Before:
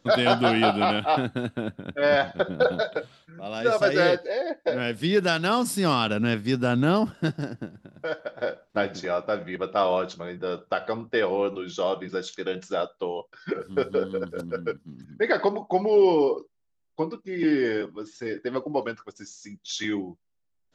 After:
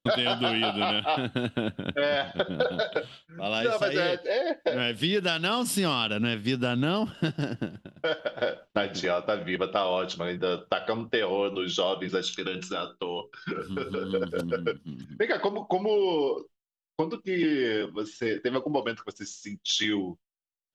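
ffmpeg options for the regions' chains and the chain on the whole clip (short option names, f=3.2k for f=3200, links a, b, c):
-filter_complex "[0:a]asettb=1/sr,asplit=3[a][b][c];[a]atrim=end=12.214[d];[b]atrim=start=12.21:end=14.12,asetpts=PTS-STARTPTS,afade=t=in:d=0.004:c=qsin,afade=t=out:st=1.906:d=0.004:c=qsin,aecho=1:1:0.8:0.5,atrim=end_sample=84231,acompressor=threshold=-32dB:ratio=4:attack=3.2:release=140:knee=1:detection=peak,bandreject=f=60:t=h:w=6,bandreject=f=120:t=h:w=6,bandreject=f=180:t=h:w=6,bandreject=f=240:t=h:w=6,bandreject=f=300:t=h:w=6,bandreject=f=360:t=h:w=6,bandreject=f=420:t=h:w=6[e];[c]atrim=start=14.116[f];[d][e]acrossfade=d=0.004:c1=hsin:c2=qsin[g];[g][f]acrossfade=d=0.004:c1=qsin:c2=hsin,equalizer=f=3k:w=2.9:g=11,agate=range=-33dB:threshold=-42dB:ratio=3:detection=peak,acompressor=threshold=-27dB:ratio=6,volume=4dB"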